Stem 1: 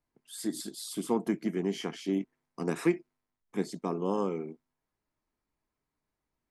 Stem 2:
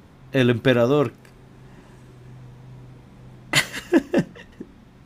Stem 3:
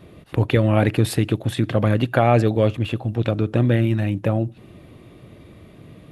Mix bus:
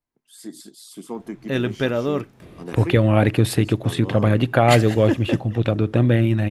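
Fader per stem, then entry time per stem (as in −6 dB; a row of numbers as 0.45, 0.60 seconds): −3.0, −4.5, +1.0 decibels; 0.00, 1.15, 2.40 seconds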